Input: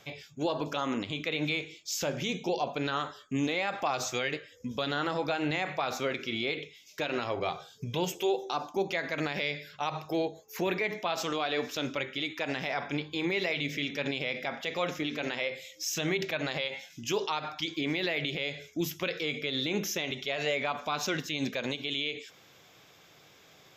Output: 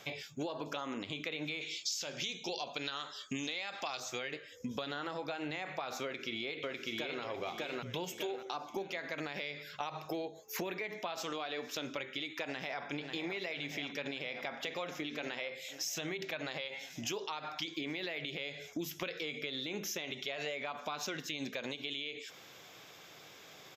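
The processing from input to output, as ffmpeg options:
-filter_complex "[0:a]asettb=1/sr,asplit=3[a][b][c];[a]atrim=end=1.614[d];[b]atrim=start=1.61:end=4,asetpts=PTS-STARTPTS,afade=t=in:d=0.004:c=qsin,afade=t=out:st=2.386:d=0.004:c=qsin,equalizer=f=4.6k:w=0.58:g=14[e];[c]atrim=start=3.996[f];[d][e]acrossfade=d=0.004:c1=hsin:c2=qsin[g];[g][f]acrossfade=d=0.004:c1=qsin:c2=hsin,asplit=2[h][i];[i]afade=t=in:st=6.03:d=0.01,afade=t=out:st=7.22:d=0.01,aecho=0:1:600|1200|1800|2400|3000:0.891251|0.3565|0.1426|0.0570401|0.022816[j];[h][j]amix=inputs=2:normalize=0,asplit=2[k][l];[l]afade=t=in:st=12.44:d=0.01,afade=t=out:st=12.84:d=0.01,aecho=0:1:540|1080|1620|2160|2700|3240|3780|4320|4860|5400|5940|6480:0.334965|0.251224|0.188418|0.141314|0.105985|0.0794889|0.0596167|0.0447125|0.0335344|0.0251508|0.0188631|0.0141473[m];[k][m]amix=inputs=2:normalize=0,lowshelf=f=140:g=-9,acompressor=threshold=-39dB:ratio=12,volume=3.5dB"

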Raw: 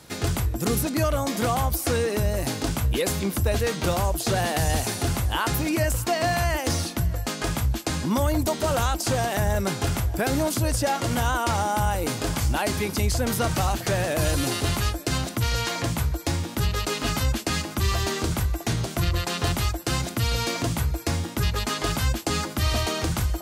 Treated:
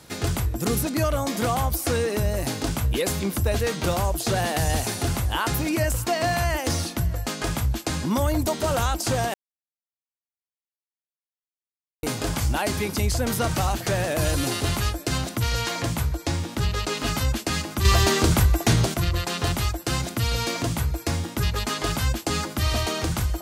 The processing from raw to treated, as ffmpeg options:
-filter_complex "[0:a]asettb=1/sr,asplit=3[a][b][c];[a]atrim=end=16.154[d];[b]atrim=start=16.15:end=16.97,asetpts=PTS-STARTPTS,afade=t=in:d=0.004:c=qsin,afade=t=out:st=0.816:d=0.004:c=qsin,acrossover=split=8700[e][f];[f]acompressor=threshold=-47dB:ratio=4:attack=1:release=60[g];[e][g]amix=inputs=2:normalize=0[h];[c]atrim=start=16.966[i];[d][h]acrossfade=d=0.004:c1=hsin:c2=qsin[j];[j][i]acrossfade=d=0.004:c1=qsin:c2=hsin,asplit=5[k][l][m][n][o];[k]atrim=end=9.34,asetpts=PTS-STARTPTS,afade=t=out:st=9.336:d=0.004:c=hsin[p];[l]atrim=start=9.34:end=12.03,asetpts=PTS-STARTPTS,volume=0[q];[m]atrim=start=12.03:end=17.852,asetpts=PTS-STARTPTS,afade=t=in:d=0.004:c=hsin[r];[n]atrim=start=17.848:end=18.942,asetpts=PTS-STARTPTS,volume=6.5dB[s];[o]atrim=start=18.938[t];[p][q][r]concat=n=3:v=0:a=1[u];[u][s]acrossfade=d=0.004:c1=hsin:c2=hsin[v];[v][t]acrossfade=d=0.004:c1=hsin:c2=hsin"

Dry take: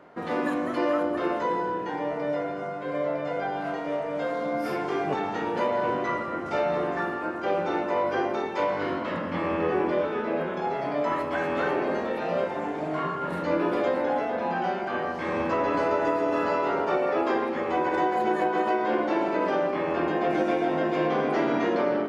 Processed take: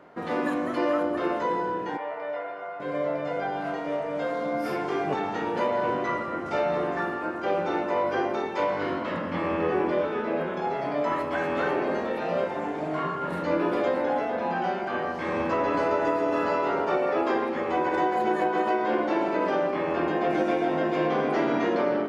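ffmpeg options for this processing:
-filter_complex "[0:a]asettb=1/sr,asplit=3[a][b][c];[a]atrim=end=1.974[d];[b]atrim=start=1.97:end=2.8,asetpts=PTS-STARTPTS,afade=t=in:d=0.004:c=qsin,afade=t=out:st=0.826:d=0.004:c=qsin,acrossover=split=510 3500:gain=0.0794 1 0.112[e][f][g];[e][f][g]amix=inputs=3:normalize=0[h];[c]atrim=start=2.796[i];[d][h]acrossfade=d=0.004:c1=hsin:c2=qsin[j];[j][i]acrossfade=d=0.004:c1=qsin:c2=hsin"

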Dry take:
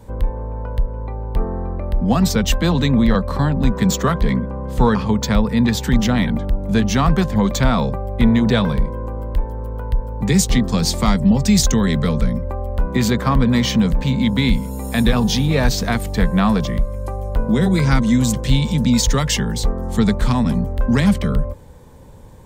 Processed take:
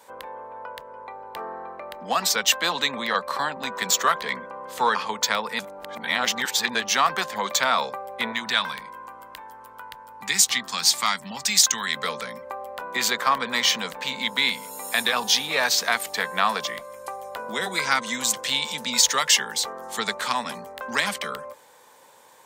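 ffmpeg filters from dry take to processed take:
-filter_complex "[0:a]asettb=1/sr,asplit=3[a][b][c];[a]atrim=end=8.324[d];[b]atrim=start=8.32:end=11.97,asetpts=PTS-STARTPTS,afade=t=in:d=0.004:c=qsin,afade=t=out:st=3.646:d=0.004:c=qsin,equalizer=f=490:t=o:w=1:g=-12.5[e];[c]atrim=start=11.966[f];[d][e]acrossfade=d=0.004:c1=hsin:c2=qsin[g];[g][f]acrossfade=d=0.004:c1=qsin:c2=hsin,asplit=3[h][i][j];[h]atrim=end=5.592[k];[i]atrim=start=5.588:end=6.752,asetpts=PTS-STARTPTS,areverse[l];[j]atrim=start=6.748[m];[k][l]acrossfade=d=0.004:c1=hsin:c2=hsin[n];[n][m]acrossfade=d=0.004:c1=hsin:c2=hsin,highpass=940,volume=3dB"

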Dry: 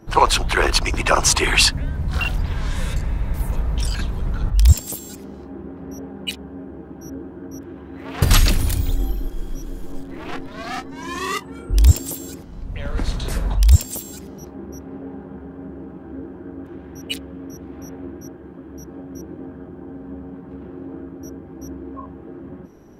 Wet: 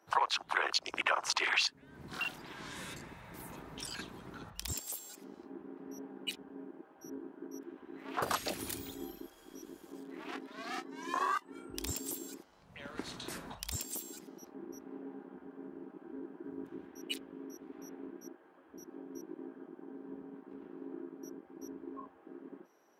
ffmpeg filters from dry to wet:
-filter_complex "[0:a]asettb=1/sr,asplit=3[a][b][c];[a]atrim=end=2.134[d];[b]atrim=start=2.13:end=2.6,asetpts=PTS-STARTPTS,afade=t=in:d=0.004:c=qsin,afade=t=out:st=0.466:d=0.004:c=qsin,equalizer=f=78:t=o:w=1.1:g=-13[e];[c]atrim=start=2.596[f];[d][e]acrossfade=d=0.004:c1=hsin:c2=qsin[g];[g][f]acrossfade=d=0.004:c1=qsin:c2=hsin,asettb=1/sr,asplit=3[h][i][j];[h]atrim=end=16.444[k];[i]atrim=start=16.44:end=16.87,asetpts=PTS-STARTPTS,afade=t=in:d=0.004:c=qsin,afade=t=out:st=0.426:d=0.004:c=qsin,bass=f=250:g=6,treble=f=4k:g=4[l];[j]atrim=start=16.866[m];[k][l]acrossfade=d=0.004:c1=hsin:c2=qsin[n];[n][m]acrossfade=d=0.004:c1=qsin:c2=hsin,afwtdn=0.0794,highpass=700,acompressor=threshold=-36dB:ratio=5,volume=5.5dB"

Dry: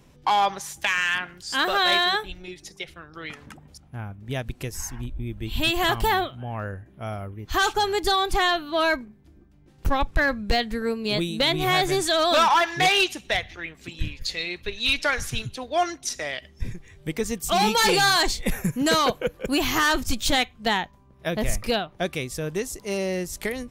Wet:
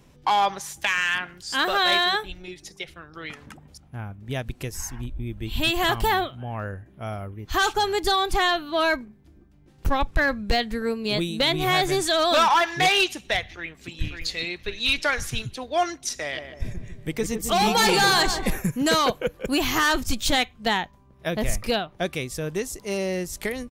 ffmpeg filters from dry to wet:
-filter_complex "[0:a]asplit=2[a][b];[b]afade=t=in:st=13.48:d=0.01,afade=t=out:st=13.96:d=0.01,aecho=0:1:550|1100|1650|2200:0.562341|0.196819|0.0688868|0.0241104[c];[a][c]amix=inputs=2:normalize=0,asplit=3[d][e][f];[d]afade=t=out:st=16.32:d=0.02[g];[e]asplit=2[h][i];[i]adelay=150,lowpass=f=1.2k:p=1,volume=-6dB,asplit=2[j][k];[k]adelay=150,lowpass=f=1.2k:p=1,volume=0.51,asplit=2[l][m];[m]adelay=150,lowpass=f=1.2k:p=1,volume=0.51,asplit=2[n][o];[o]adelay=150,lowpass=f=1.2k:p=1,volume=0.51,asplit=2[p][q];[q]adelay=150,lowpass=f=1.2k:p=1,volume=0.51,asplit=2[r][s];[s]adelay=150,lowpass=f=1.2k:p=1,volume=0.51[t];[h][j][l][n][p][r][t]amix=inputs=7:normalize=0,afade=t=in:st=16.32:d=0.02,afade=t=out:st=18.58:d=0.02[u];[f]afade=t=in:st=18.58:d=0.02[v];[g][u][v]amix=inputs=3:normalize=0"

